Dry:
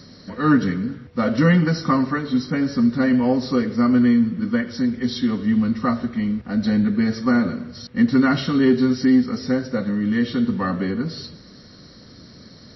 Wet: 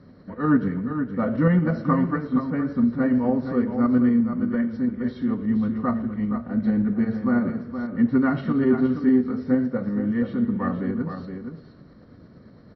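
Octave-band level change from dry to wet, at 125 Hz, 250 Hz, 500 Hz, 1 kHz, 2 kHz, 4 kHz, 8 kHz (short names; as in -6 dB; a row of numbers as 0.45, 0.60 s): -2.5 dB, -3.0 dB, -2.5 dB, -4.0 dB, -7.5 dB, under -20 dB, n/a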